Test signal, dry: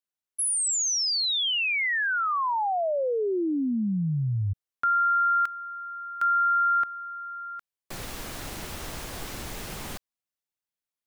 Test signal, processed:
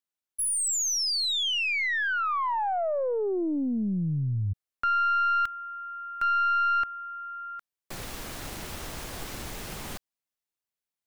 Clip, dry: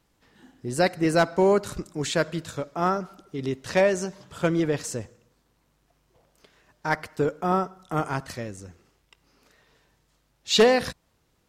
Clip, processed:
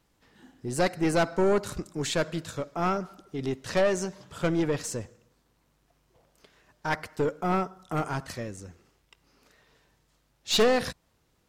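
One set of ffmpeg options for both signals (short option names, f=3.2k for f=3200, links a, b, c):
-af "aeval=exprs='(tanh(7.08*val(0)+0.35)-tanh(0.35))/7.08':c=same"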